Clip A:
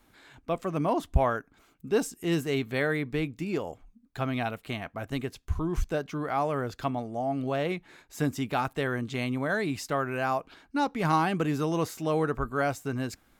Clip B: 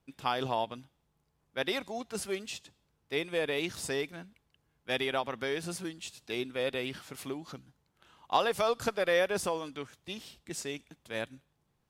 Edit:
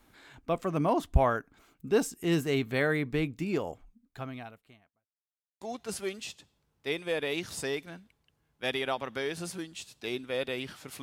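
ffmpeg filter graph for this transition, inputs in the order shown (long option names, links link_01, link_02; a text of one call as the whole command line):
ffmpeg -i cue0.wav -i cue1.wav -filter_complex "[0:a]apad=whole_dur=11.02,atrim=end=11.02,asplit=2[link_01][link_02];[link_01]atrim=end=5.09,asetpts=PTS-STARTPTS,afade=type=out:start_time=3.69:duration=1.4:curve=qua[link_03];[link_02]atrim=start=5.09:end=5.61,asetpts=PTS-STARTPTS,volume=0[link_04];[1:a]atrim=start=1.87:end=7.28,asetpts=PTS-STARTPTS,afade=type=in:duration=0.004:curve=hsin[link_05];[link_03][link_04][link_05]concat=n=3:v=0:a=1" out.wav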